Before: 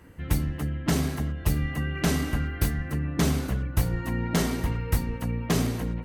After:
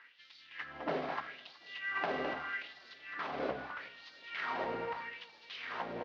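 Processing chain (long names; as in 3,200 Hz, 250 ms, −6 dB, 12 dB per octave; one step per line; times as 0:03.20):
variable-slope delta modulation 32 kbit/s
low-shelf EQ 120 Hz +8.5 dB
brickwall limiter −20.5 dBFS, peak gain reduction 13.5 dB
high-frequency loss of the air 350 metres
single-tap delay 209 ms −7.5 dB
auto-filter high-pass sine 0.79 Hz 540–4,400 Hz
feedback echo with a swinging delay time 370 ms, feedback 45%, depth 93 cents, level −24 dB
level +1.5 dB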